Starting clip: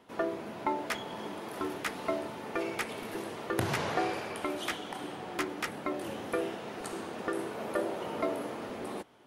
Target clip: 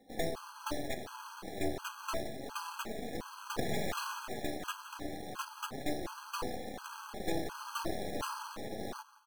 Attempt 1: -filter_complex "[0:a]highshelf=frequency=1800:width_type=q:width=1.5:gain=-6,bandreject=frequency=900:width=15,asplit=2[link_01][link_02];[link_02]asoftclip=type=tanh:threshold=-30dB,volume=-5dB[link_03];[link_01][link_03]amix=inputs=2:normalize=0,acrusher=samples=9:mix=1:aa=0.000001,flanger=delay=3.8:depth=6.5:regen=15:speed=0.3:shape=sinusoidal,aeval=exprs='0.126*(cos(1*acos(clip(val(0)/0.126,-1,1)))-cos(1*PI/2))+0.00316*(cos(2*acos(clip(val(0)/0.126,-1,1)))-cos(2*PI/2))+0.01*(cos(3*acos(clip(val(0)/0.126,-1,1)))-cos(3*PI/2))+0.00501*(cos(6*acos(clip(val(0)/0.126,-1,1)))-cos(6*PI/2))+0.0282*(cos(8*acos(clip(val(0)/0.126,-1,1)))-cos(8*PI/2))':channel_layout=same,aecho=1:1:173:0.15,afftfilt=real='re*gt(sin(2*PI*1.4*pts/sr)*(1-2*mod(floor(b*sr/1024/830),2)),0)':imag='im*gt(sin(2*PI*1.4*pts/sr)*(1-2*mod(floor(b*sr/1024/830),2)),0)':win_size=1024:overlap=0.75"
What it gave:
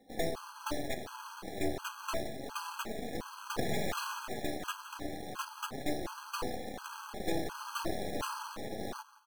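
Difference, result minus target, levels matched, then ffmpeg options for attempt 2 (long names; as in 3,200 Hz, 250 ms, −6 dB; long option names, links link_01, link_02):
soft clipping: distortion −6 dB
-filter_complex "[0:a]highshelf=frequency=1800:width_type=q:width=1.5:gain=-6,bandreject=frequency=900:width=15,asplit=2[link_01][link_02];[link_02]asoftclip=type=tanh:threshold=-38dB,volume=-5dB[link_03];[link_01][link_03]amix=inputs=2:normalize=0,acrusher=samples=9:mix=1:aa=0.000001,flanger=delay=3.8:depth=6.5:regen=15:speed=0.3:shape=sinusoidal,aeval=exprs='0.126*(cos(1*acos(clip(val(0)/0.126,-1,1)))-cos(1*PI/2))+0.00316*(cos(2*acos(clip(val(0)/0.126,-1,1)))-cos(2*PI/2))+0.01*(cos(3*acos(clip(val(0)/0.126,-1,1)))-cos(3*PI/2))+0.00501*(cos(6*acos(clip(val(0)/0.126,-1,1)))-cos(6*PI/2))+0.0282*(cos(8*acos(clip(val(0)/0.126,-1,1)))-cos(8*PI/2))':channel_layout=same,aecho=1:1:173:0.15,afftfilt=real='re*gt(sin(2*PI*1.4*pts/sr)*(1-2*mod(floor(b*sr/1024/830),2)),0)':imag='im*gt(sin(2*PI*1.4*pts/sr)*(1-2*mod(floor(b*sr/1024/830),2)),0)':win_size=1024:overlap=0.75"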